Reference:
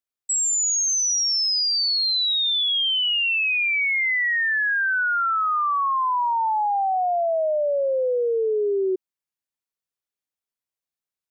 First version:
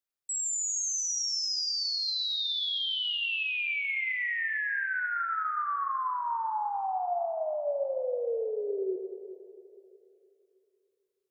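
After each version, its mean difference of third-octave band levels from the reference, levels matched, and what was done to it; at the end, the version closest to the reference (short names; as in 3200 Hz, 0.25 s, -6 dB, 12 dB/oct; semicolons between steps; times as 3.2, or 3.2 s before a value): 4.0 dB: limiter -26.5 dBFS, peak gain reduction 7.5 dB; plate-style reverb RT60 3 s, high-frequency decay 0.85×, DRR 6 dB; gain -2.5 dB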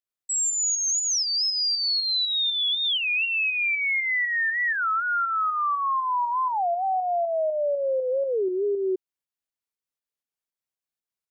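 1.0 dB: in parallel at -0.5 dB: pump 120 bpm, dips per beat 2, -17 dB, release 0.2 s; on the sum: record warp 33 1/3 rpm, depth 250 cents; gain -7.5 dB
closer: second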